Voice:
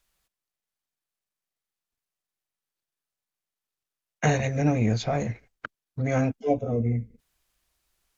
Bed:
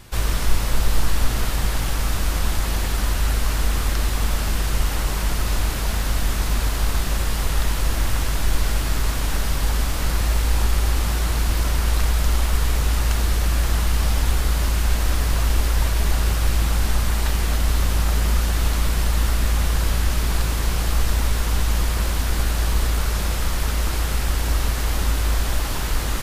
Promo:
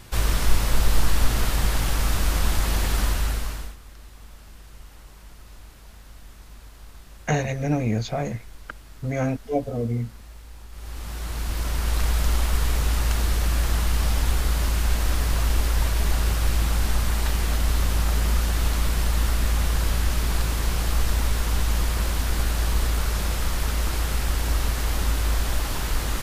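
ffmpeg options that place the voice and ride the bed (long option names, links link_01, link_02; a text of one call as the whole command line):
ffmpeg -i stem1.wav -i stem2.wav -filter_complex "[0:a]adelay=3050,volume=-0.5dB[link_01];[1:a]volume=20.5dB,afade=type=out:start_time=3:duration=0.76:silence=0.0707946,afade=type=in:start_time=10.7:duration=1.44:silence=0.0891251[link_02];[link_01][link_02]amix=inputs=2:normalize=0" out.wav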